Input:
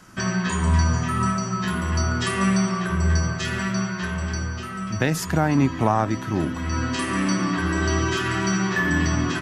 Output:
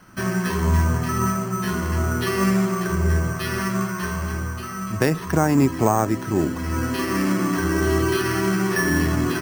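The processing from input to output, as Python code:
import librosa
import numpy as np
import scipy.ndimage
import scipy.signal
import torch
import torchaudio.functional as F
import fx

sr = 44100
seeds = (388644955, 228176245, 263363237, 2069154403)

y = fx.peak_eq(x, sr, hz=1100.0, db=7.0, octaves=0.26, at=(3.34, 5.45))
y = np.repeat(scipy.signal.resample_poly(y, 1, 6), 6)[:len(y)]
y = fx.dynamic_eq(y, sr, hz=400.0, q=2.1, threshold_db=-40.0, ratio=4.0, max_db=7)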